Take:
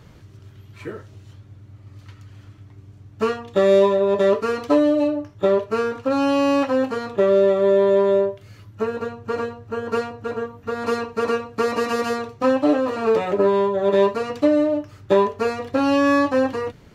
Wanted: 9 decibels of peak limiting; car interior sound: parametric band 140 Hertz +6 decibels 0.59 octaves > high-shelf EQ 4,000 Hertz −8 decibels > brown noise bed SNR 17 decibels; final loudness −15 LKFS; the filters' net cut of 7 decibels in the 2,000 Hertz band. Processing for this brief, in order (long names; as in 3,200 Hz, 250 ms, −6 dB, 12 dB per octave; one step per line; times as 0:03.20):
parametric band 2,000 Hz −7.5 dB
brickwall limiter −14.5 dBFS
parametric band 140 Hz +6 dB 0.59 octaves
high-shelf EQ 4,000 Hz −8 dB
brown noise bed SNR 17 dB
level +9 dB